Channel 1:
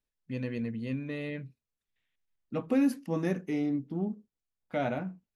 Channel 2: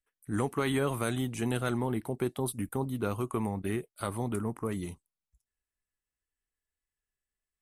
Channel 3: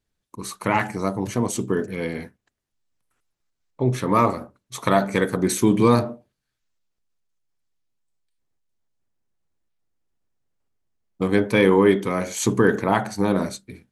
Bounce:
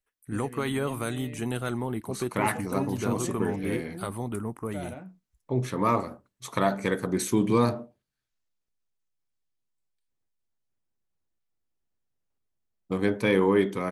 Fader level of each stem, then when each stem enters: -8.0 dB, 0.0 dB, -6.0 dB; 0.00 s, 0.00 s, 1.70 s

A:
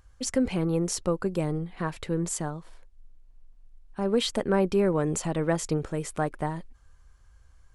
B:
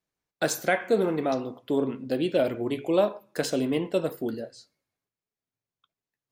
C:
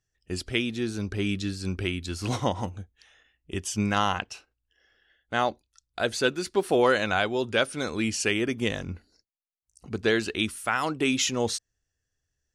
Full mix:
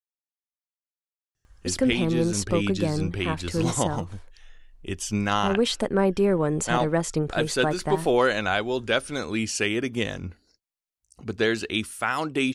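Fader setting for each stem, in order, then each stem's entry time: +2.0 dB, mute, +0.5 dB; 1.45 s, mute, 1.35 s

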